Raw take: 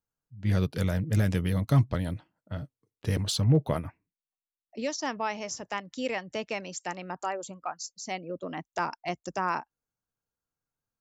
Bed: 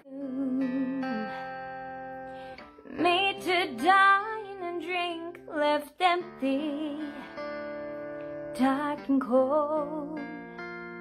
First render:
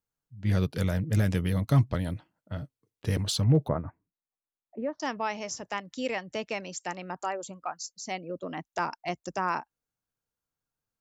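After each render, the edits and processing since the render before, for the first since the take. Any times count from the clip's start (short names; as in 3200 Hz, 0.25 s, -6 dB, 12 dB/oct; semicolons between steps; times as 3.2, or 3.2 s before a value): 3.68–5 LPF 1500 Hz 24 dB/oct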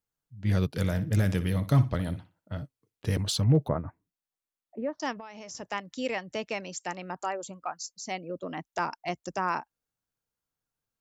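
0.75–2.57 flutter echo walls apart 10.3 m, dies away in 0.26 s; 5.12–5.55 compressor 16:1, threshold -38 dBFS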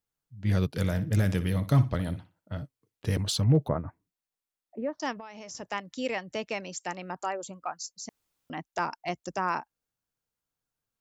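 8.09–8.5 room tone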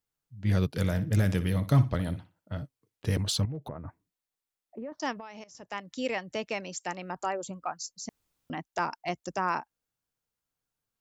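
3.45–4.92 compressor 5:1, threshold -35 dBFS; 5.44–5.96 fade in, from -15.5 dB; 7.16–8.55 low shelf 240 Hz +7 dB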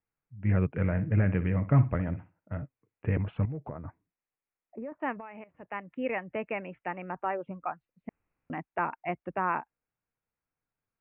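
steep low-pass 2600 Hz 72 dB/oct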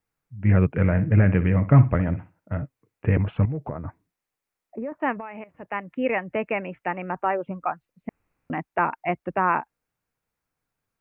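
gain +7.5 dB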